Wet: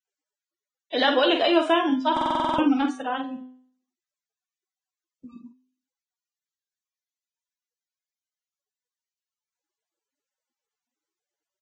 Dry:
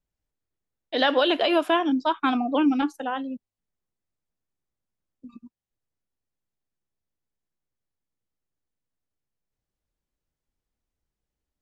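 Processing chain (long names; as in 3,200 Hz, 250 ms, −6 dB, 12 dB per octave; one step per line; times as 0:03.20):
hum removal 127.6 Hz, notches 34
on a send: ambience of single reflections 12 ms −12 dB, 47 ms −6 dB
on the sum: buffer that repeats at 0:02.12, samples 2,048, times 9
Ogg Vorbis 16 kbit/s 22,050 Hz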